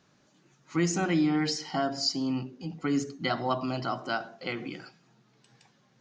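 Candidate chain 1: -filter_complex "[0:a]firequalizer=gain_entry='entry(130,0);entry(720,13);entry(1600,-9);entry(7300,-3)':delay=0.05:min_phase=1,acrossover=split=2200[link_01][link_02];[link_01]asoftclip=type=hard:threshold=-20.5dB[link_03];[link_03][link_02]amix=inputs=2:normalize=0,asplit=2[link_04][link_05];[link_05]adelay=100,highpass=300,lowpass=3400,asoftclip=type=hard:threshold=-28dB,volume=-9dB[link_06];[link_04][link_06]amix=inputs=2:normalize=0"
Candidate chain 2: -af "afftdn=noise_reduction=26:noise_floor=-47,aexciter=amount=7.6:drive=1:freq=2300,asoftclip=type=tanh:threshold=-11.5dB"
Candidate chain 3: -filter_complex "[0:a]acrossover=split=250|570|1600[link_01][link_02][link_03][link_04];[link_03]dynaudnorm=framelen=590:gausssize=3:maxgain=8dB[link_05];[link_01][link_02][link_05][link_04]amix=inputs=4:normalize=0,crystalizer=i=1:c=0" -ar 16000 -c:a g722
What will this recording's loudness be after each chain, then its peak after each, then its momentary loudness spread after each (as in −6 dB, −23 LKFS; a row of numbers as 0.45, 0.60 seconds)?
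−27.0, −23.0, −27.0 LKFS; −17.5, −11.5, −9.5 dBFS; 9, 16, 10 LU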